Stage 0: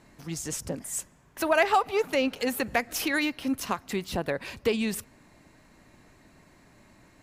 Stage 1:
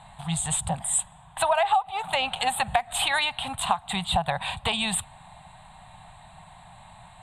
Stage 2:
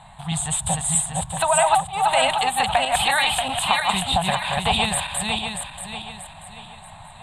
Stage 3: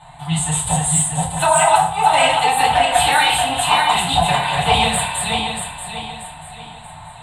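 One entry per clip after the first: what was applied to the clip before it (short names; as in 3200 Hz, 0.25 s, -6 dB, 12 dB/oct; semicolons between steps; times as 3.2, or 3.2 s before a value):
EQ curve 170 Hz 0 dB, 300 Hz -29 dB, 510 Hz -17 dB, 760 Hz +12 dB, 1400 Hz -3 dB, 2200 Hz -5 dB, 3700 Hz +8 dB, 5600 Hz -29 dB, 8300 Hz +7 dB, 14000 Hz -22 dB; compressor 10:1, threshold -28 dBFS, peak gain reduction 19.5 dB; gain +8.5 dB
regenerating reverse delay 0.317 s, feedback 60%, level -1.5 dB; gain +2.5 dB
in parallel at -11 dB: hard clip -14.5 dBFS, distortion -15 dB; on the sum: FDN reverb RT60 0.58 s, low-frequency decay 0.85×, high-frequency decay 0.7×, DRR -8 dB; gain -5.5 dB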